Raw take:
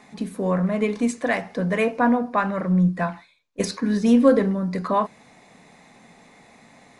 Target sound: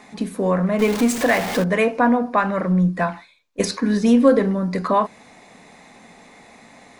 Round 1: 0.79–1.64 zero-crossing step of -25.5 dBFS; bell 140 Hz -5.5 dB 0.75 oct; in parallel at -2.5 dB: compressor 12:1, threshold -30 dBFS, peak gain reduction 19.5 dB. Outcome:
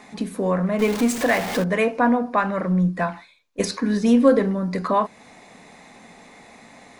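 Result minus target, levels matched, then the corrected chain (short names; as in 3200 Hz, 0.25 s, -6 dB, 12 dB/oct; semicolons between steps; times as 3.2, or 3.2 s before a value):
compressor: peak gain reduction +8.5 dB
0.79–1.64 zero-crossing step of -25.5 dBFS; bell 140 Hz -5.5 dB 0.75 oct; in parallel at -2.5 dB: compressor 12:1, threshold -20.5 dBFS, peak gain reduction 11 dB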